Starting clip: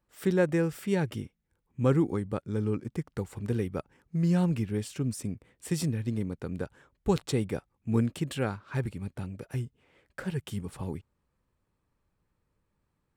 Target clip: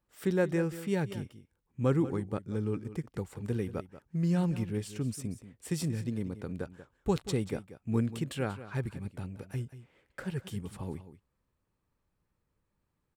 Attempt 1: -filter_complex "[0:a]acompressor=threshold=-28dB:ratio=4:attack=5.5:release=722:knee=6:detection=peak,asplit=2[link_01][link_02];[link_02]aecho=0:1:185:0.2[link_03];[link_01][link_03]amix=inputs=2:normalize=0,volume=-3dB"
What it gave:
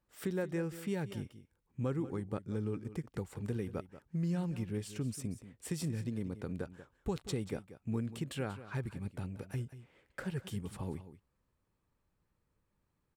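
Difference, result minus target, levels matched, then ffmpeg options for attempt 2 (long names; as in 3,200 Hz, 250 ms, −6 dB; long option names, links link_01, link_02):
downward compressor: peak gain reduction +9 dB
-filter_complex "[0:a]asplit=2[link_01][link_02];[link_02]aecho=0:1:185:0.2[link_03];[link_01][link_03]amix=inputs=2:normalize=0,volume=-3dB"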